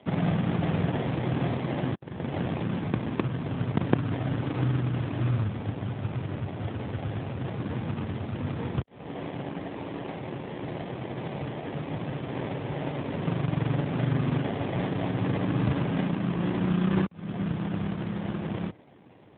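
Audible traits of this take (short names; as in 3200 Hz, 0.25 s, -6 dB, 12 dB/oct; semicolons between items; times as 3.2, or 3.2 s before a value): aliases and images of a low sample rate 1400 Hz, jitter 20%; AMR-NB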